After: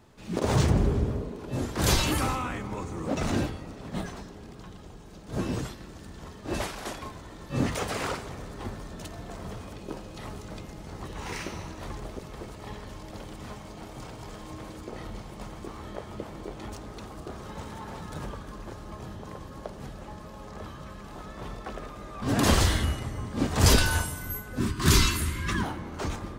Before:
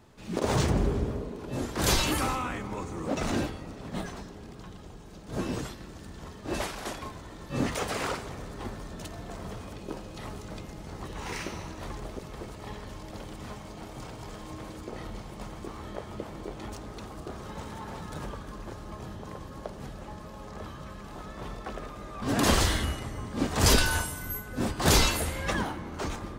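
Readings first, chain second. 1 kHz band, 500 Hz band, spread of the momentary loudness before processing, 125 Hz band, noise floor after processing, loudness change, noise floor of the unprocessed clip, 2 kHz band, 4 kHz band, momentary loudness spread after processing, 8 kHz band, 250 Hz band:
-0.5 dB, 0.0 dB, 17 LU, +3.5 dB, -45 dBFS, +2.0 dB, -45 dBFS, 0.0 dB, 0.0 dB, 19 LU, 0.0 dB, +1.5 dB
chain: time-frequency box 24.60–25.63 s, 430–940 Hz -15 dB; dynamic bell 100 Hz, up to +5 dB, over -40 dBFS, Q 0.75

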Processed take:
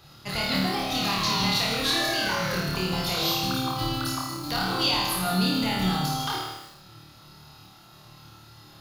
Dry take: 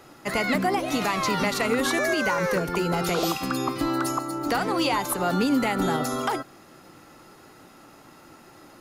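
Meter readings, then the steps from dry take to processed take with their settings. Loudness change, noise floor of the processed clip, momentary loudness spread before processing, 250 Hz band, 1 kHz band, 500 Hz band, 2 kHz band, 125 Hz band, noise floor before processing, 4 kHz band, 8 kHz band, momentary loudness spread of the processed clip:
-0.5 dB, -51 dBFS, 5 LU, -3.0 dB, -2.5 dB, -7.0 dB, -2.0 dB, +3.0 dB, -51 dBFS, +7.5 dB, 0.0 dB, 7 LU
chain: graphic EQ 125/250/500/1000/2000/4000/8000 Hz +9/-11/-11/-3/-9/+9/-10 dB; flutter echo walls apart 4.6 m, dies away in 0.86 s; bit-crushed delay 152 ms, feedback 35%, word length 7-bit, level -9 dB

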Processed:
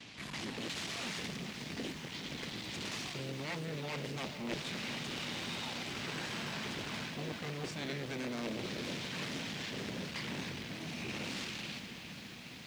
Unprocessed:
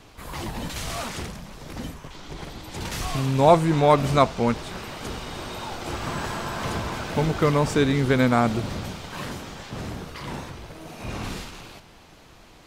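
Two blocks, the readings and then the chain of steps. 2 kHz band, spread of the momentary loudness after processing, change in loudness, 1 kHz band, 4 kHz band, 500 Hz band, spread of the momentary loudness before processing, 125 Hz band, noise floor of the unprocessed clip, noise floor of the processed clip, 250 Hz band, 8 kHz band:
-8.0 dB, 4 LU, -15.0 dB, -20.5 dB, -4.5 dB, -19.5 dB, 19 LU, -17.0 dB, -50 dBFS, -48 dBFS, -14.5 dB, -8.5 dB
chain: gate with hold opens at -41 dBFS; wavefolder -11.5 dBFS; reverse; compression 10:1, threshold -31 dBFS, peak gain reduction 16 dB; reverse; high-order bell 670 Hz -12.5 dB 2.5 oct; on a send: filtered feedback delay 485 ms, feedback 71%, level -15 dB; on the sum: Chebyshev shaper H 3 -8 dB, 7 -21 dB, 8 -28 dB, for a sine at -21.5 dBFS; band-pass 190–5200 Hz; one-sided clip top -42.5 dBFS; bit-crushed delay 414 ms, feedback 80%, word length 10-bit, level -11.5 dB; trim +6.5 dB

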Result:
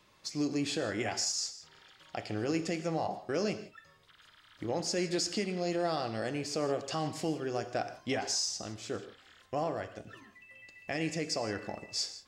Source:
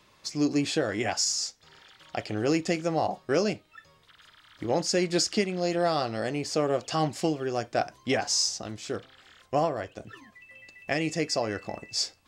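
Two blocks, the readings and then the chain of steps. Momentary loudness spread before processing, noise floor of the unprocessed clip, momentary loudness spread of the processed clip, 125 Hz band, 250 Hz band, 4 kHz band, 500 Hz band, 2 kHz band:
11 LU, -61 dBFS, 13 LU, -5.5 dB, -5.5 dB, -5.5 dB, -6.5 dB, -6.0 dB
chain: peak limiter -18.5 dBFS, peak gain reduction 5 dB; gated-style reverb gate 190 ms flat, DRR 10 dB; trim -4.5 dB

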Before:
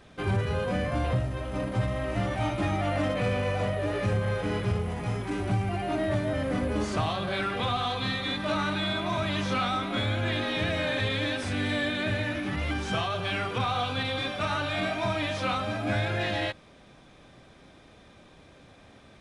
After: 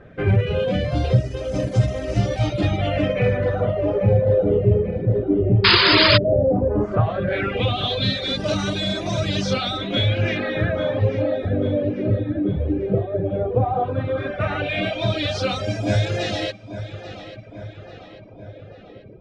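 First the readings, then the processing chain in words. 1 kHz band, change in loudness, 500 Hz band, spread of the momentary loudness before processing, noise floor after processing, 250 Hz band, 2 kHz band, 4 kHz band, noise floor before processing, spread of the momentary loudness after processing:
+3.0 dB, +8.0 dB, +10.0 dB, 2 LU, -42 dBFS, +7.0 dB, +5.5 dB, +10.0 dB, -54 dBFS, 9 LU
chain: LFO low-pass sine 0.14 Hz 380–5900 Hz; graphic EQ 125/250/500/1000/2000/4000/8000 Hz +5/-3/+7/-12/-4/-3/+5 dB; on a send: filtered feedback delay 841 ms, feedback 59%, low-pass 4 kHz, level -12.5 dB; on the sum: painted sound noise, 5.64–6.18 s, 880–5100 Hz -21 dBFS; reverb removal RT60 0.87 s; trim +7.5 dB

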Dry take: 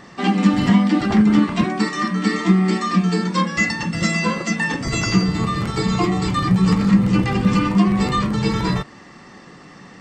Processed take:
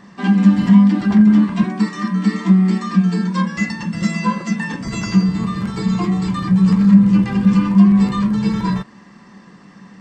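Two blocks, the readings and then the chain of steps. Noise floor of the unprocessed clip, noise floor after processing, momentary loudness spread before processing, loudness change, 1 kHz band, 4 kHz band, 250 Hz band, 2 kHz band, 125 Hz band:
-43 dBFS, -44 dBFS, 6 LU, +3.0 dB, -3.5 dB, -6.0 dB, +4.0 dB, -4.5 dB, +2.5 dB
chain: saturation -6 dBFS, distortion -23 dB; small resonant body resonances 200/1000/1600 Hz, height 13 dB, ringing for 85 ms; trim -5.5 dB

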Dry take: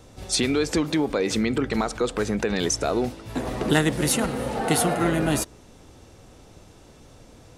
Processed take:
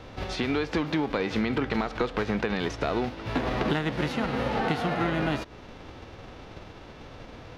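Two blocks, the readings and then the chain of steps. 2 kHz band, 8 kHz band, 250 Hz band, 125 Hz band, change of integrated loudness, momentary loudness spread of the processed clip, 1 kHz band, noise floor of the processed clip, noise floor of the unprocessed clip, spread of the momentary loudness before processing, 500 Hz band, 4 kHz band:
-2.0 dB, -22.0 dB, -4.0 dB, -3.5 dB, -4.0 dB, 18 LU, -1.5 dB, -46 dBFS, -50 dBFS, 6 LU, -4.5 dB, -6.5 dB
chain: formants flattened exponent 0.6; compression, threshold -29 dBFS, peak gain reduction 14 dB; distance through air 280 m; trim +6.5 dB

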